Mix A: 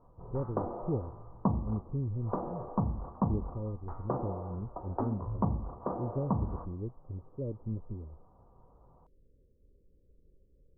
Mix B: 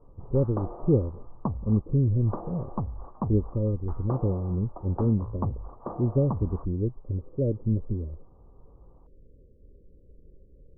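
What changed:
speech +11.0 dB
reverb: off

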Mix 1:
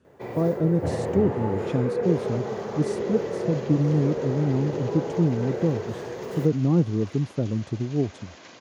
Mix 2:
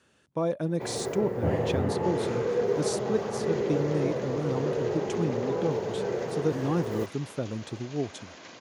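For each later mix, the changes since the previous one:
speech: add tilt shelving filter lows −10 dB, about 690 Hz
first sound: entry +0.60 s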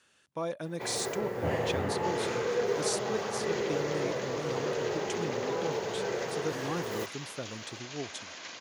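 speech −4.0 dB
master: add tilt shelving filter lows −6.5 dB, about 820 Hz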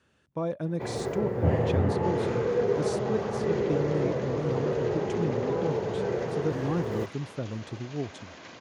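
master: add spectral tilt −3.5 dB per octave

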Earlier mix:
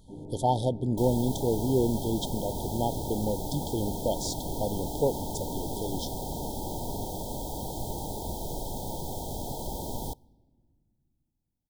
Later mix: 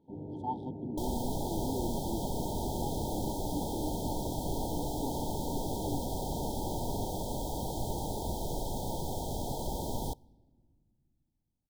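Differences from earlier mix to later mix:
speech: add formant filter u
master: add high-shelf EQ 9,300 Hz −5.5 dB

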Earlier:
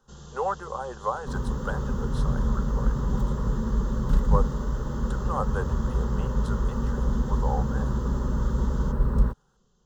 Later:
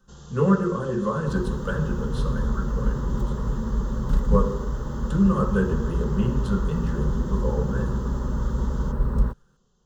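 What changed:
speech: remove high-pass with resonance 750 Hz, resonance Q 9.2
reverb: on, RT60 0.85 s

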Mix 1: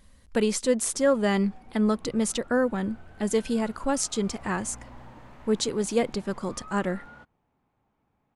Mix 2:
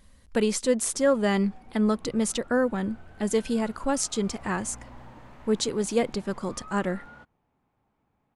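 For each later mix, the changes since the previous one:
nothing changed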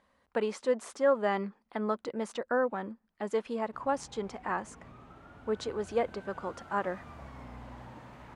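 speech: add resonant band-pass 900 Hz, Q 0.99
background: entry +2.80 s

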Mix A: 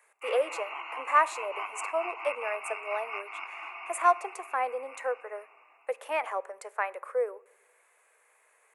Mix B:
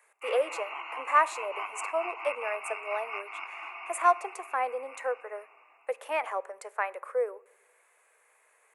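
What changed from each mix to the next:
nothing changed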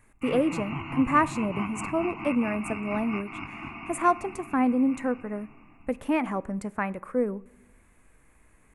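master: remove Butterworth high-pass 450 Hz 48 dB per octave

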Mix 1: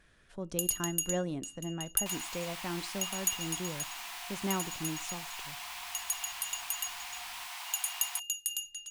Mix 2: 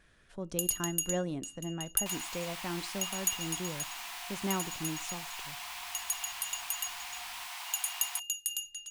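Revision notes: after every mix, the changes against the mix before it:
second sound: send +6.5 dB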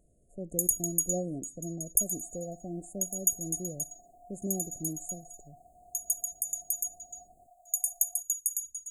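first sound +4.5 dB
second sound: add high-frequency loss of the air 440 metres
master: add linear-phase brick-wall band-stop 750–6,500 Hz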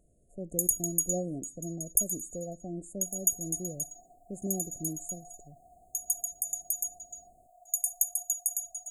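second sound: entry +1.00 s

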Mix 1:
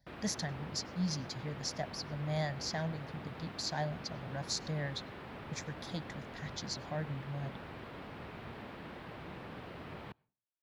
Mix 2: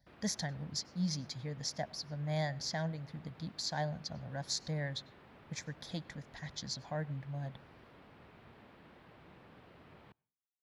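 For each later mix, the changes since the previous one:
background −11.5 dB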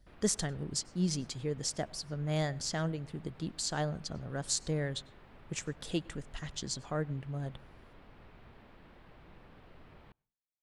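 speech: remove phaser with its sweep stopped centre 1,900 Hz, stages 8
master: remove high-pass filter 96 Hz 12 dB per octave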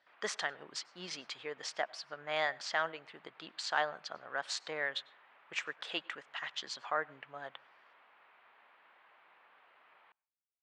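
speech +8.5 dB
master: add flat-topped band-pass 1,600 Hz, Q 0.72

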